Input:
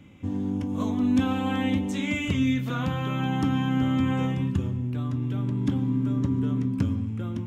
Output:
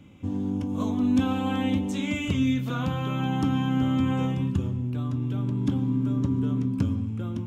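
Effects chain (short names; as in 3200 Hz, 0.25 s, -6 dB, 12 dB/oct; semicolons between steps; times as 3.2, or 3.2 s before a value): bell 1900 Hz -6 dB 0.44 oct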